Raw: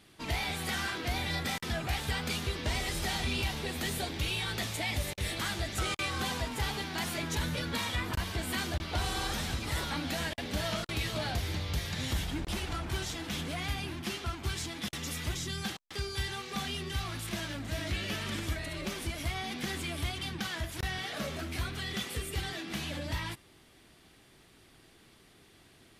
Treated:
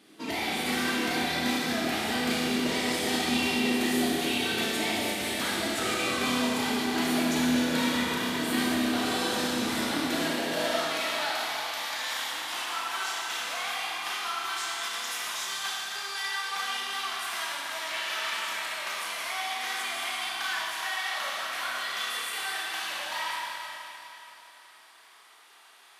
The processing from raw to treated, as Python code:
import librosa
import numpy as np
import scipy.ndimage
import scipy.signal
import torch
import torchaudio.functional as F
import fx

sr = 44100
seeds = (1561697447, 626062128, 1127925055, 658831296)

y = fx.filter_sweep_highpass(x, sr, from_hz=270.0, to_hz=980.0, start_s=10.06, end_s=10.98, q=2.1)
y = fx.rev_schroeder(y, sr, rt60_s=3.3, comb_ms=25, drr_db=-4.0)